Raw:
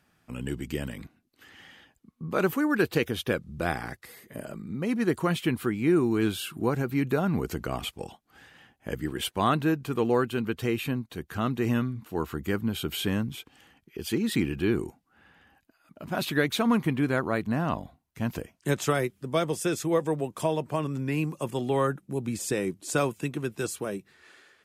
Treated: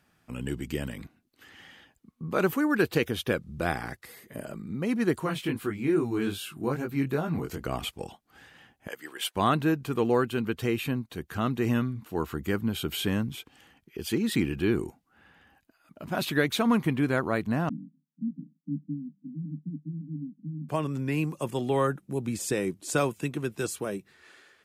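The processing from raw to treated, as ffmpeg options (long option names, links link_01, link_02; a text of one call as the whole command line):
ffmpeg -i in.wav -filter_complex "[0:a]asettb=1/sr,asplit=3[link_01][link_02][link_03];[link_01]atrim=end=5.204[link_04];[link_02]atrim=start=5.2:end=7.65,asetpts=PTS-STARTPTS,afade=type=in:duration=0.004:curve=qsin,afade=type=out:start_time=2.446:duration=0.004:curve=qsin,flanger=delay=18:depth=4.6:speed=2.4[link_05];[link_03]atrim=start=7.646[link_06];[link_04][link_05]acrossfade=duration=0.004:curve1=hsin:curve2=qsin[link_07];[link_07][link_06]acrossfade=duration=0.004:curve1=qsin:curve2=hsin,asettb=1/sr,asplit=3[link_08][link_09][link_10];[link_08]atrim=end=8.884[link_11];[link_09]atrim=start=8.88:end=9.35,asetpts=PTS-STARTPTS,afade=type=in:duration=0.004:curve=qsin,afade=type=out:start_time=0.466:duration=0.004:curve=qsin,highpass=710[link_12];[link_10]atrim=start=9.346[link_13];[link_11][link_12]acrossfade=duration=0.004:curve1=hsin:curve2=qsin[link_14];[link_14][link_13]acrossfade=duration=0.004:curve1=qsin:curve2=hsin,asettb=1/sr,asplit=3[link_15][link_16][link_17];[link_15]atrim=end=17.694[link_18];[link_16]atrim=start=17.69:end=20.69,asetpts=PTS-STARTPTS,afade=type=in:duration=0.004:curve=qsin,afade=type=out:start_time=2.996:duration=0.004:curve=qsin,asuperpass=centerf=210:order=20:qfactor=1.4[link_19];[link_17]atrim=start=20.686[link_20];[link_18][link_19]acrossfade=duration=0.004:curve1=hsin:curve2=qsin[link_21];[link_21][link_20]acrossfade=duration=0.004:curve1=qsin:curve2=hsin" out.wav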